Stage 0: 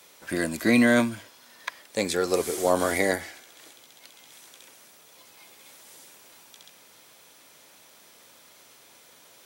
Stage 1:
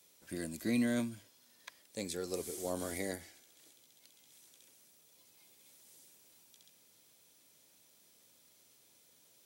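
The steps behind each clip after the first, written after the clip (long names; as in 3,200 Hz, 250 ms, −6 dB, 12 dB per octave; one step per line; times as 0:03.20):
parametric band 1,200 Hz −11.5 dB 2.8 octaves
level −9 dB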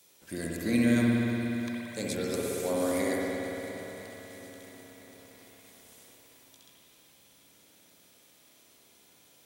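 spring reverb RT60 3.6 s, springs 59 ms, chirp 65 ms, DRR −4 dB
feedback echo at a low word length 335 ms, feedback 80%, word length 10 bits, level −14.5 dB
level +4 dB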